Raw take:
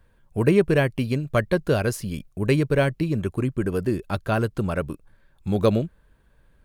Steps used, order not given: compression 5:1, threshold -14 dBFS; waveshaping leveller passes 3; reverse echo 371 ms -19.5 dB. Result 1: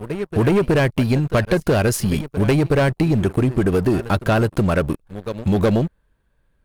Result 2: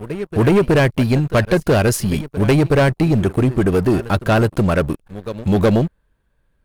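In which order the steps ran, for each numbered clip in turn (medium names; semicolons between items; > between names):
reverse echo > waveshaping leveller > compression; reverse echo > compression > waveshaping leveller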